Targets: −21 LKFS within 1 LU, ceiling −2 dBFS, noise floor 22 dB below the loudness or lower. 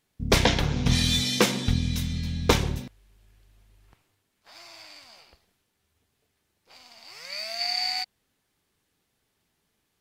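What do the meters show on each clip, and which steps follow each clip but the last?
integrated loudness −25.0 LKFS; sample peak −2.0 dBFS; target loudness −21.0 LKFS
→ level +4 dB
brickwall limiter −2 dBFS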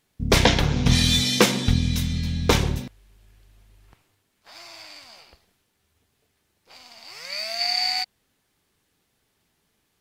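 integrated loudness −21.5 LKFS; sample peak −2.0 dBFS; background noise floor −72 dBFS

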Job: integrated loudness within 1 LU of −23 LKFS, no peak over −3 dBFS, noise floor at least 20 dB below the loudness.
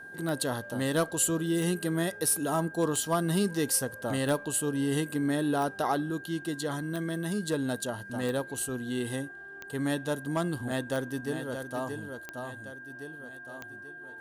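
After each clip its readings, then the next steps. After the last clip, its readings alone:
number of clicks 11; interfering tone 1,600 Hz; level of the tone −43 dBFS; integrated loudness −30.5 LKFS; sample peak −17.0 dBFS; target loudness −23.0 LKFS
→ click removal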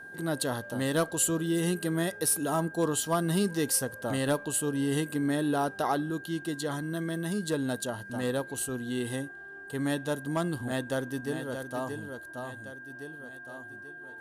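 number of clicks 0; interfering tone 1,600 Hz; level of the tone −43 dBFS
→ notch filter 1,600 Hz, Q 30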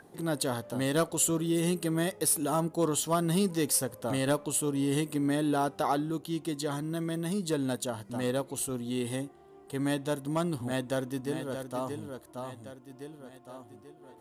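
interfering tone none found; integrated loudness −30.5 LKFS; sample peak −17.0 dBFS; target loudness −23.0 LKFS
→ level +7.5 dB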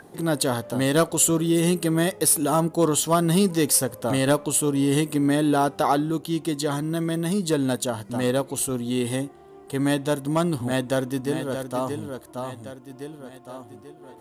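integrated loudness −23.0 LKFS; sample peak −9.5 dBFS; background noise floor −47 dBFS

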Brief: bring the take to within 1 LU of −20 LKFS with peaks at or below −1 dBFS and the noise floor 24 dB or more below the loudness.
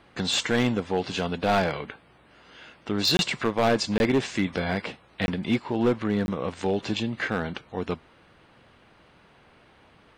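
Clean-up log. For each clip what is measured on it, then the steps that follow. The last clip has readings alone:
share of clipped samples 0.8%; peaks flattened at −16.0 dBFS; number of dropouts 4; longest dropout 21 ms; integrated loudness −26.5 LKFS; sample peak −16.0 dBFS; target loudness −20.0 LKFS
→ clipped peaks rebuilt −16 dBFS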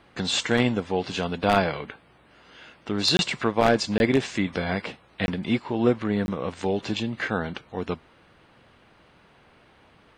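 share of clipped samples 0.0%; number of dropouts 4; longest dropout 21 ms
→ repair the gap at 0:03.17/0:03.98/0:05.26/0:06.26, 21 ms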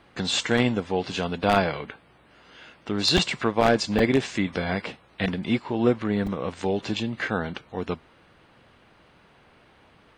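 number of dropouts 0; integrated loudness −25.5 LKFS; sample peak −7.0 dBFS; target loudness −20.0 LKFS
→ level +5.5 dB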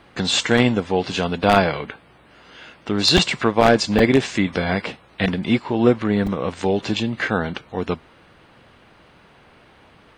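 integrated loudness −20.0 LKFS; sample peak −1.5 dBFS; background noise floor −52 dBFS

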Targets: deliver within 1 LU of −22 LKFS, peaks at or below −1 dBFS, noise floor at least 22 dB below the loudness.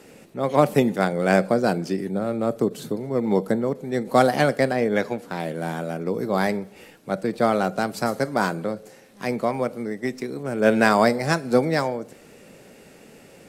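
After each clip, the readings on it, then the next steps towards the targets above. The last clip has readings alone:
crackle rate 28 per second; integrated loudness −23.0 LKFS; sample peak −2.5 dBFS; target loudness −22.0 LKFS
→ click removal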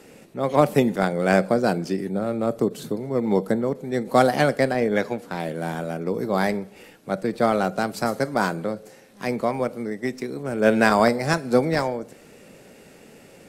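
crackle rate 0 per second; integrated loudness −23.0 LKFS; sample peak −2.5 dBFS; target loudness −22.0 LKFS
→ level +1 dB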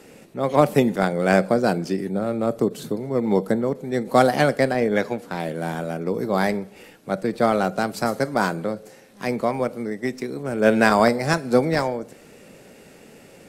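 integrated loudness −22.0 LKFS; sample peak −1.5 dBFS; background noise floor −48 dBFS

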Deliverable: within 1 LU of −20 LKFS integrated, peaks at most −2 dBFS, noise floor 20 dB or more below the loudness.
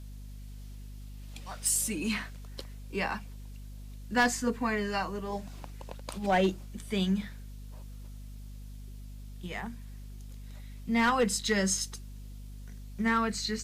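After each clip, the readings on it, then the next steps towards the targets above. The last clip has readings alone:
share of clipped samples 0.2%; peaks flattened at −19.0 dBFS; mains hum 50 Hz; hum harmonics up to 250 Hz; level of the hum −41 dBFS; integrated loudness −30.0 LKFS; sample peak −19.0 dBFS; target loudness −20.0 LKFS
→ clipped peaks rebuilt −19 dBFS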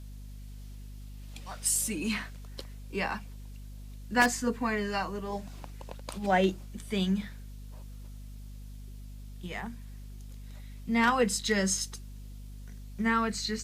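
share of clipped samples 0.0%; mains hum 50 Hz; hum harmonics up to 250 Hz; level of the hum −41 dBFS
→ hum removal 50 Hz, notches 5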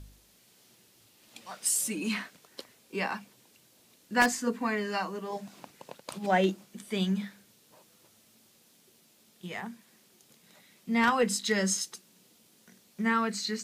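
mains hum none found; integrated loudness −30.0 LKFS; sample peak −10.0 dBFS; target loudness −20.0 LKFS
→ level +10 dB
brickwall limiter −2 dBFS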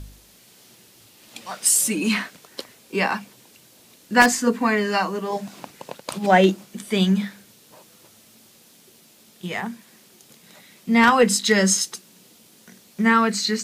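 integrated loudness −20.0 LKFS; sample peak −2.0 dBFS; background noise floor −53 dBFS

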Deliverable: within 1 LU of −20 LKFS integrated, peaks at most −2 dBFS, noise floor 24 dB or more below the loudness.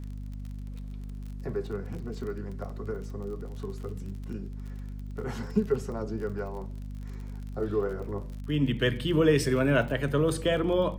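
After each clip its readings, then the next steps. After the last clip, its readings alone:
crackle rate 36 per second; mains hum 50 Hz; hum harmonics up to 250 Hz; level of the hum −35 dBFS; integrated loudness −30.0 LKFS; sample peak −11.0 dBFS; target loudness −20.0 LKFS
→ click removal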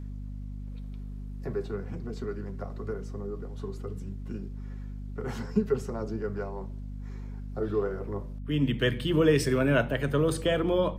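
crackle rate 0 per second; mains hum 50 Hz; hum harmonics up to 250 Hz; level of the hum −35 dBFS
→ mains-hum notches 50/100/150/200/250 Hz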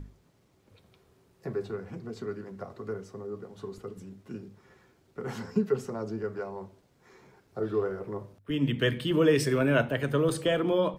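mains hum none found; integrated loudness −30.0 LKFS; sample peak −11.0 dBFS; target loudness −20.0 LKFS
→ level +10 dB
brickwall limiter −2 dBFS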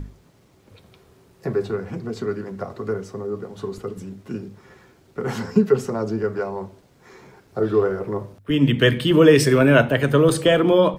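integrated loudness −20.0 LKFS; sample peak −2.0 dBFS; background noise floor −56 dBFS

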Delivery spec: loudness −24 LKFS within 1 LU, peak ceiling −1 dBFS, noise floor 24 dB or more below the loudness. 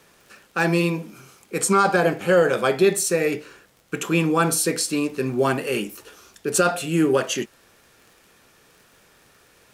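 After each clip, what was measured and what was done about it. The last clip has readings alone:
crackle rate 34 per second; integrated loudness −21.5 LKFS; sample peak −7.0 dBFS; target loudness −24.0 LKFS
→ click removal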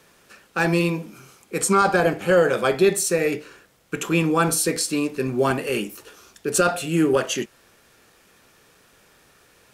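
crackle rate 0 per second; integrated loudness −21.5 LKFS; sample peak −7.0 dBFS; target loudness −24.0 LKFS
→ level −2.5 dB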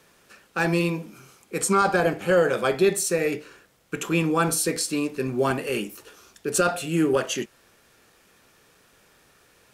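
integrated loudness −24.0 LKFS; sample peak −9.5 dBFS; background noise floor −60 dBFS

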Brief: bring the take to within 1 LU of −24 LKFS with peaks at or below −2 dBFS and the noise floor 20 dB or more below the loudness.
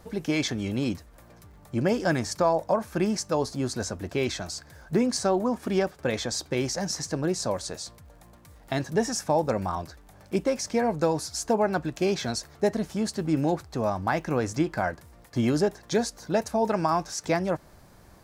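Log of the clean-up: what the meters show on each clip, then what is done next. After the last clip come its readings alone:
crackle rate 52 per second; integrated loudness −27.5 LKFS; sample peak −11.5 dBFS; target loudness −24.0 LKFS
→ click removal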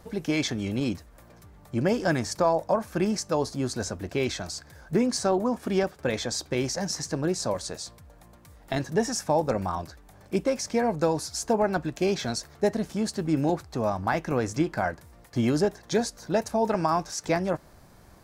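crackle rate 0.71 per second; integrated loudness −27.5 LKFS; sample peak −11.5 dBFS; target loudness −24.0 LKFS
→ level +3.5 dB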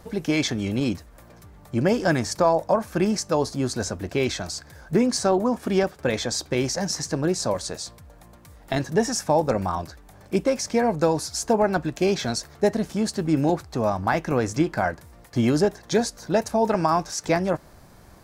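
integrated loudness −24.0 LKFS; sample peak −8.0 dBFS; background noise floor −49 dBFS

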